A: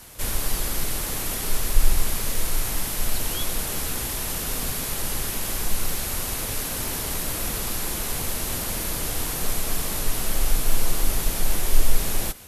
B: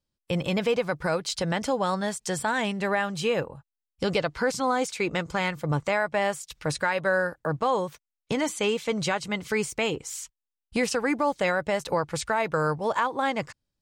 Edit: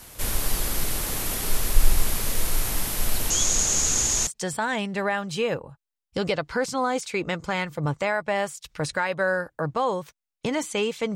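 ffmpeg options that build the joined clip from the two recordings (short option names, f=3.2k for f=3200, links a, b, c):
-filter_complex "[0:a]asettb=1/sr,asplit=3[a][b][c];[a]atrim=end=3.304[d];[b]atrim=start=3.3:end=4.27,asetpts=PTS-STARTPTS,afade=t=in:d=0.004:c=qsin,afade=t=out:st=0.966:d=0.004:c=qsin,lowpass=f=6.7k:t=q:w=12[e];[c]atrim=start=4.266[f];[d][e]acrossfade=d=0.004:c1=hsin:c2=qsin[g];[g][f]acrossfade=d=0.004:c1=qsin:c2=hsin,apad=whole_dur=11.15,atrim=end=11.15,atrim=end=4.272[h];[1:a]atrim=start=2.128:end=9.01[i];[h][i]acrossfade=d=0.004:c1=hsin:c2=hsin"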